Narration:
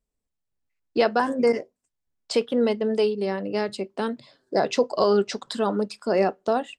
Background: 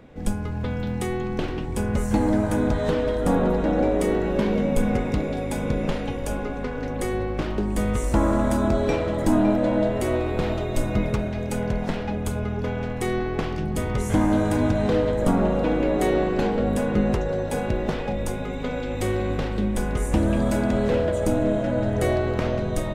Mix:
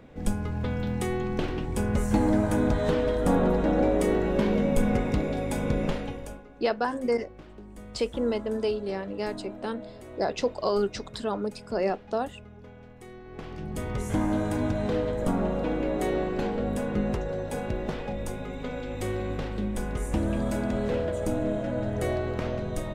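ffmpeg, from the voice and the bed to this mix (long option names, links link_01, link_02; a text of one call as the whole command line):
ffmpeg -i stem1.wav -i stem2.wav -filter_complex "[0:a]adelay=5650,volume=-5.5dB[link_01];[1:a]volume=12.5dB,afade=type=out:start_time=5.83:duration=0.6:silence=0.11885,afade=type=in:start_time=13.23:duration=0.65:silence=0.188365[link_02];[link_01][link_02]amix=inputs=2:normalize=0" out.wav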